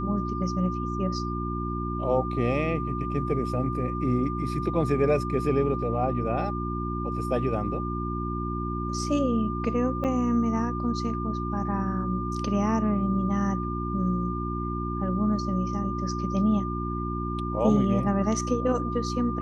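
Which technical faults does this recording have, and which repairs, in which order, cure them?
hum 60 Hz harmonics 6 -31 dBFS
whine 1.2 kHz -33 dBFS
10.04–10.05 s: dropout 7.2 ms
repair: band-stop 1.2 kHz, Q 30; de-hum 60 Hz, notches 6; interpolate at 10.04 s, 7.2 ms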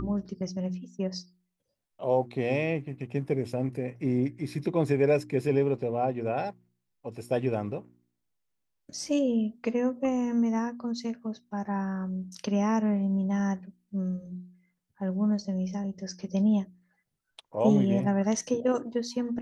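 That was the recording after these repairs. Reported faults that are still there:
nothing left

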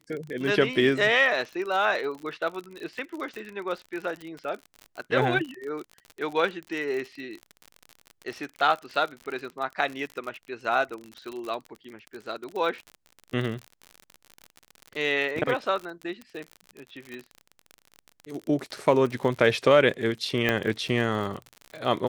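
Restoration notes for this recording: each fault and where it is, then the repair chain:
crackle 53 per s -32 dBFS
17.14 s: pop -26 dBFS
20.49 s: pop -10 dBFS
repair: de-click

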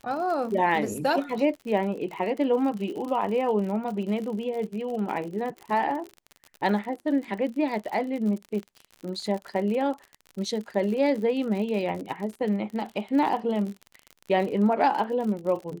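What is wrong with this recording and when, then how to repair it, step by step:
crackle 55 per s -33 dBFS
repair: de-click

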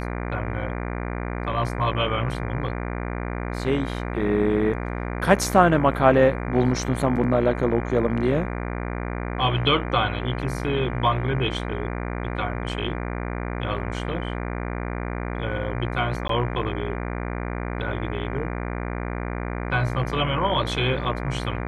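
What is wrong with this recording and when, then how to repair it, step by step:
buzz 60 Hz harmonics 40 -29 dBFS
16.28–16.29 s: dropout 13 ms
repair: de-hum 60 Hz, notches 40; interpolate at 16.28 s, 13 ms

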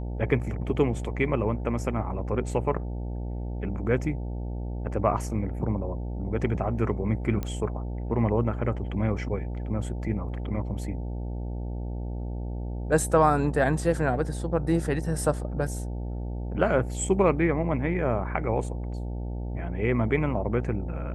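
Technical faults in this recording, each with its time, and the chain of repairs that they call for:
buzz 60 Hz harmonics 15 -32 dBFS
7.43 s: pop -18 dBFS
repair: de-click; de-hum 60 Hz, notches 15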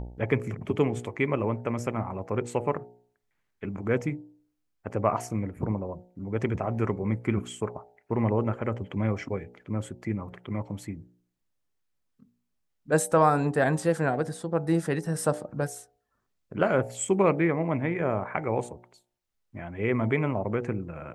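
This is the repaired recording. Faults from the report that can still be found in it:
nothing left

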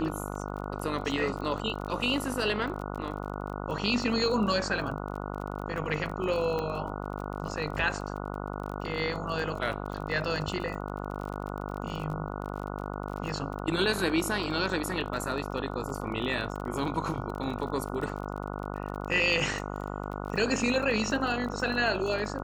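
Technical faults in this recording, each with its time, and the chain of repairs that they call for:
buzz 50 Hz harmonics 29 -36 dBFS
crackle 34 per s -36 dBFS
6.59 s: pop -20 dBFS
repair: de-click; de-hum 50 Hz, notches 29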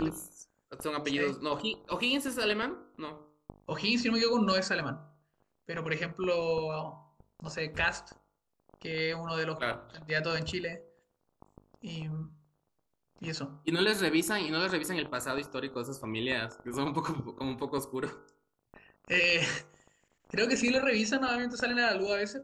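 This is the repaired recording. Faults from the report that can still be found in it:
nothing left

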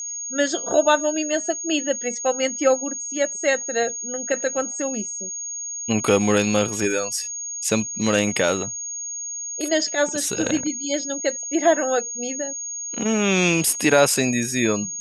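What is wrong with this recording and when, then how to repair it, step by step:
whine 6.6 kHz -28 dBFS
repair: band-stop 6.6 kHz, Q 30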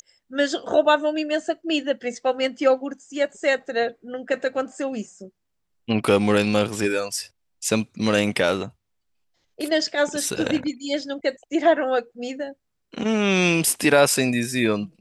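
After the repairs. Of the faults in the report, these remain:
nothing left

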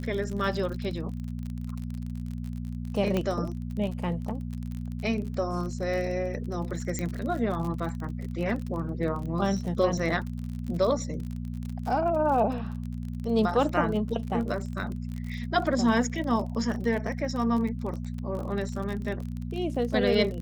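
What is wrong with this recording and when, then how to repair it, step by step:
crackle 39 per s -33 dBFS
hum 60 Hz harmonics 4 -34 dBFS
3.17 s: pop -15 dBFS
6.99 s: pop -17 dBFS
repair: de-click; de-hum 60 Hz, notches 4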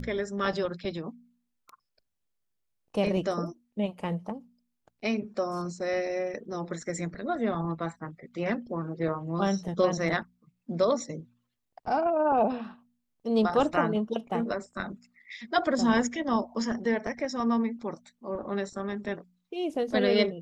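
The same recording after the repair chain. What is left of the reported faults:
3.17 s: pop

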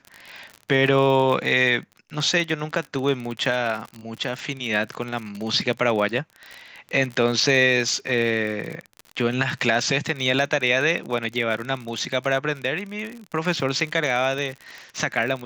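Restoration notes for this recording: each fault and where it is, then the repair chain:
crackle 46 per s -28 dBFS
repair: de-click

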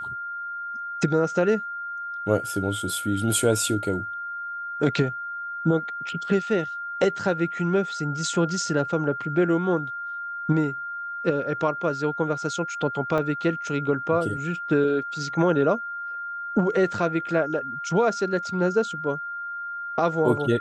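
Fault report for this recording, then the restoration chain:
whine 1.4 kHz -30 dBFS
13.18 s: dropout 3.5 ms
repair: band-stop 1.4 kHz, Q 30; interpolate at 13.18 s, 3.5 ms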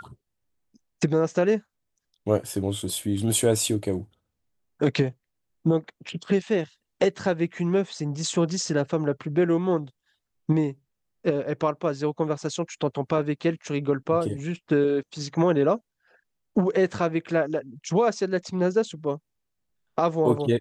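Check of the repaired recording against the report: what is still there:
nothing left

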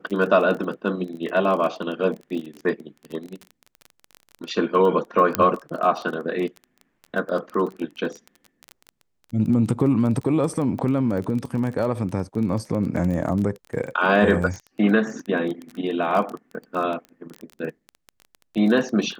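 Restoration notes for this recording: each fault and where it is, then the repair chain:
crackle 21 per s -28 dBFS
5.35 s: pop -4 dBFS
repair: de-click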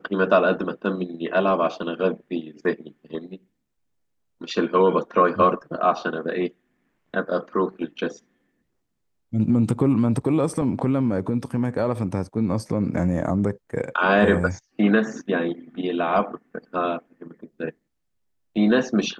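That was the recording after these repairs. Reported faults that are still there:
nothing left

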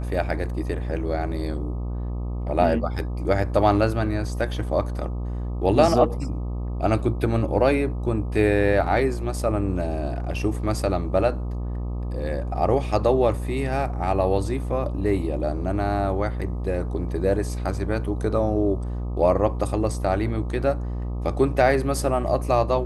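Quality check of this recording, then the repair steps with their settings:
buzz 60 Hz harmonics 21 -28 dBFS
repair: de-hum 60 Hz, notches 21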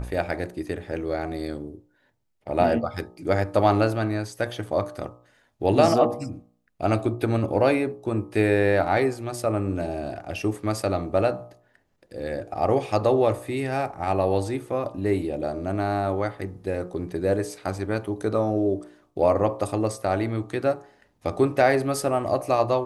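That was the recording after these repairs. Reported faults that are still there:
nothing left

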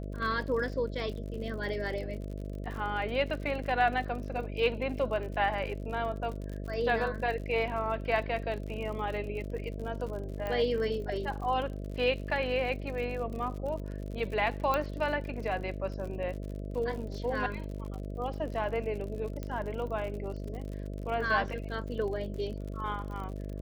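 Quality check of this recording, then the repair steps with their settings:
buzz 50 Hz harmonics 13 -38 dBFS
crackle 57 per s -39 dBFS
10.47 s: pop -23 dBFS
14.74 s: pop -16 dBFS
19.43 s: pop -24 dBFS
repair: de-click; de-hum 50 Hz, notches 13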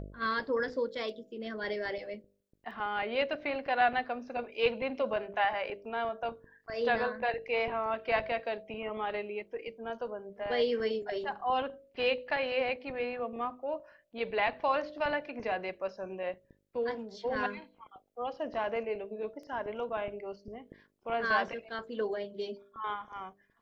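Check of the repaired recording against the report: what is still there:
19.43 s: pop

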